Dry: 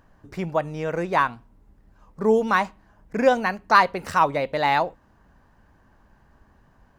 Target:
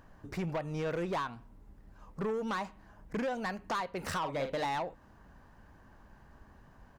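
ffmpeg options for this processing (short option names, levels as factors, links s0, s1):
-filter_complex "[0:a]acompressor=threshold=0.0501:ratio=10,asoftclip=type=tanh:threshold=0.0355,asplit=3[s0][s1][s2];[s0]afade=t=out:st=4.22:d=0.02[s3];[s1]asplit=2[s4][s5];[s5]adelay=44,volume=0.447[s6];[s4][s6]amix=inputs=2:normalize=0,afade=t=in:st=4.22:d=0.02,afade=t=out:st=4.64:d=0.02[s7];[s2]afade=t=in:st=4.64:d=0.02[s8];[s3][s7][s8]amix=inputs=3:normalize=0"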